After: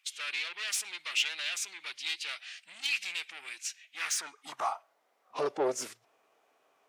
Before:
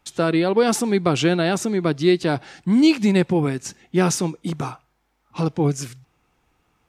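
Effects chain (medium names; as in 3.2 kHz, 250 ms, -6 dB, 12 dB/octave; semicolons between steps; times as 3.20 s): formant-preserving pitch shift -2 st; saturation -22 dBFS, distortion -8 dB; high-pass sweep 2.5 kHz -> 510 Hz, 3.93–5.01 s; trim -3.5 dB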